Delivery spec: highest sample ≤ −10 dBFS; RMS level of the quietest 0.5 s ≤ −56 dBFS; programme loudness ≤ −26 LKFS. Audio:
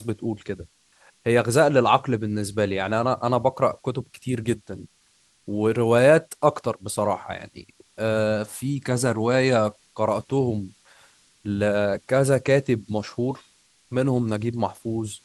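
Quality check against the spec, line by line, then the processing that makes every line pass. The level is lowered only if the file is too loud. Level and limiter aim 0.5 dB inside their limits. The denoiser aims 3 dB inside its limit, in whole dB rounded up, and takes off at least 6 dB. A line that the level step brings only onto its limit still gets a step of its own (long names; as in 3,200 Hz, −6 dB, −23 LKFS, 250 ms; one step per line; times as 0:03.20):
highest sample −4.5 dBFS: out of spec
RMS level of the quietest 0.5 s −62 dBFS: in spec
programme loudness −23.5 LKFS: out of spec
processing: level −3 dB
brickwall limiter −10.5 dBFS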